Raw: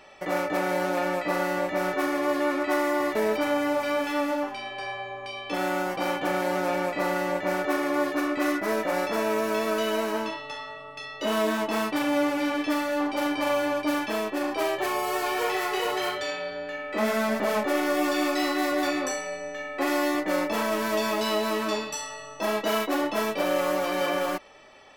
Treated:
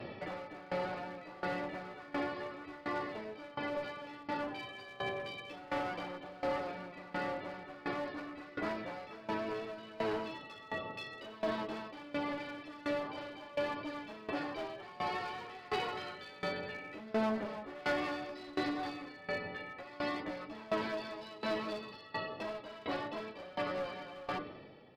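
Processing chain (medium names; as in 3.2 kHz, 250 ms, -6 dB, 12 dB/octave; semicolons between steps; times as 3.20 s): de-hum 98.47 Hz, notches 40; compression 6:1, threshold -32 dBFS, peak gain reduction 12 dB; chorus voices 4, 0.63 Hz, delay 11 ms, depth 1.7 ms; resampled via 11.025 kHz; band noise 95–590 Hz -51 dBFS; one-sided clip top -36 dBFS; sawtooth tremolo in dB decaying 1.4 Hz, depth 20 dB; trim +6 dB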